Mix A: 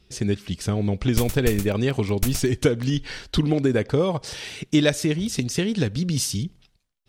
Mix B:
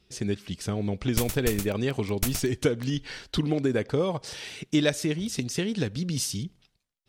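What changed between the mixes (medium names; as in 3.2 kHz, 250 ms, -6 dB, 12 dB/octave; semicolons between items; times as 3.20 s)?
speech -4.0 dB; master: add bass shelf 84 Hz -7.5 dB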